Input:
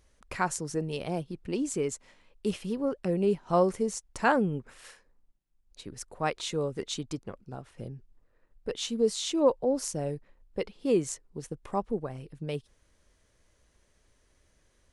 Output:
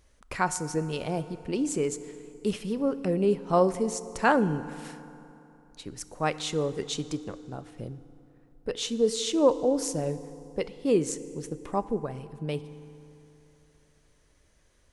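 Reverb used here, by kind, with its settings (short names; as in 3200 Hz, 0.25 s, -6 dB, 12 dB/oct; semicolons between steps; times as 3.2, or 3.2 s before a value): FDN reverb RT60 3 s, high-frequency decay 0.65×, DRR 13.5 dB; gain +2 dB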